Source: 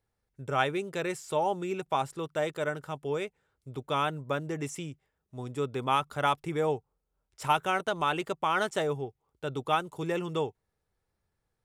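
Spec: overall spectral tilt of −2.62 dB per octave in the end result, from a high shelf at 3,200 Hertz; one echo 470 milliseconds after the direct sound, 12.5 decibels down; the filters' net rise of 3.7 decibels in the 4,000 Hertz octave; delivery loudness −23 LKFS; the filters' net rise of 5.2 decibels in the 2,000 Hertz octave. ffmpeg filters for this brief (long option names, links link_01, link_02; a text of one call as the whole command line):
ffmpeg -i in.wav -af "equalizer=frequency=2000:width_type=o:gain=8.5,highshelf=frequency=3200:gain=-7,equalizer=frequency=4000:width_type=o:gain=6,aecho=1:1:470:0.237,volume=6dB" out.wav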